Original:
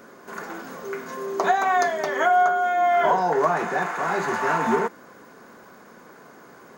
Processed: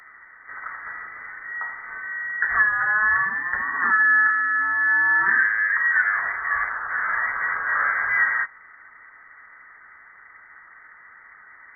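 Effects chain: frequency inversion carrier 3.7 kHz; speed mistake 78 rpm record played at 45 rpm

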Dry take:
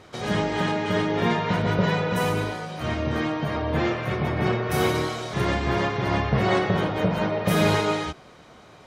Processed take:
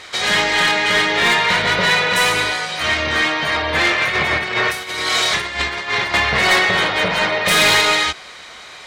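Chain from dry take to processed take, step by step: self-modulated delay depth 0.061 ms; graphic EQ 125/250/1000/2000/4000/8000 Hz -10/-5/+3/+12/+11/+10 dB; 4.01–6.14 s: compressor with a negative ratio -23 dBFS, ratio -0.5; saturation -12 dBFS, distortion -16 dB; treble shelf 10 kHz +8 dB; trim +4 dB

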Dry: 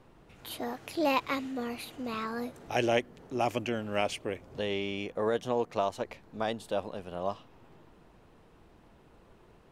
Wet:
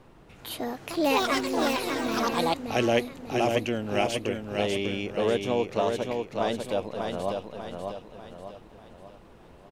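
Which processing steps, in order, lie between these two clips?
dynamic bell 1.2 kHz, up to -5 dB, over -42 dBFS, Q 0.93; feedback delay 594 ms, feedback 44%, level -4.5 dB; 0.68–2.99 s: ever faster or slower copies 225 ms, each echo +6 st, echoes 2; trim +4.5 dB

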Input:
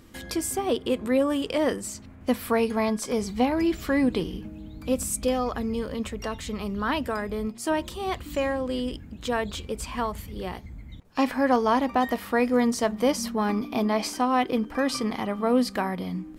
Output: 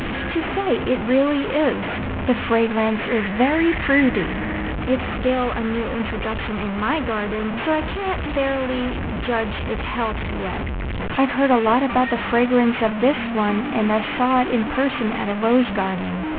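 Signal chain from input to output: one-bit delta coder 16 kbps, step -24 dBFS; 3.08–4.73 s: peaking EQ 1.9 kHz +9.5 dB 0.36 oct; trim +5 dB

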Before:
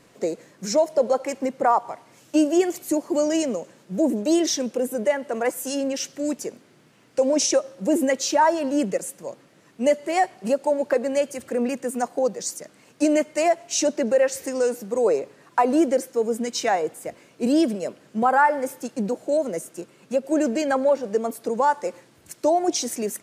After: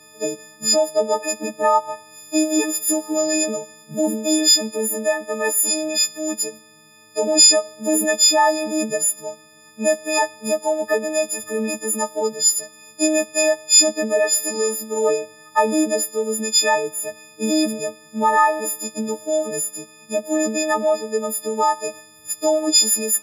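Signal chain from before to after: partials quantised in pitch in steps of 6 st; harmonic-percussive split percussive -5 dB

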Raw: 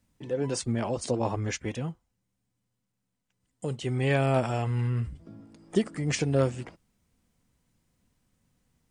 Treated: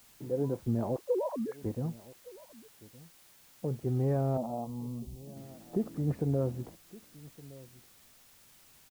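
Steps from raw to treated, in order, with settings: 0.96–1.64 s: formants replaced by sine waves; Bessel low-pass 700 Hz, order 4; peak limiter -19.5 dBFS, peak gain reduction 6 dB; added noise white -59 dBFS; 4.37–5.37 s: static phaser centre 400 Hz, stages 6; echo from a far wall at 200 m, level -20 dB; trim -1 dB

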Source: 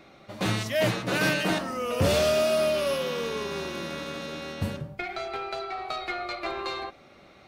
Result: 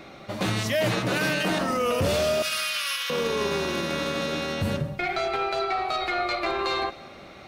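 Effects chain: 2.42–3.10 s: high-pass 1.4 kHz 24 dB/octave; peak limiter -25 dBFS, peak gain reduction 10.5 dB; multi-head delay 70 ms, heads second and third, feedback 43%, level -22 dB; trim +8 dB

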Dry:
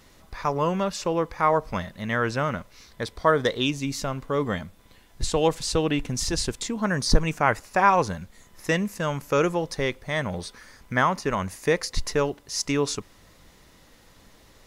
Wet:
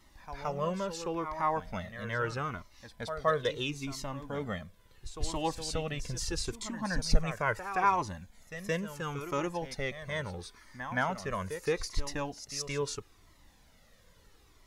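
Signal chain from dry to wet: reverse echo 171 ms -10.5 dB; Shepard-style flanger falling 0.75 Hz; trim -4.5 dB

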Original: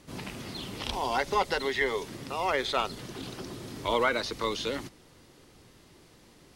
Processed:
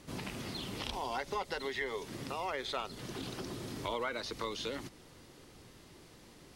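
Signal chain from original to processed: compression 2.5:1, threshold -38 dBFS, peak gain reduction 11.5 dB

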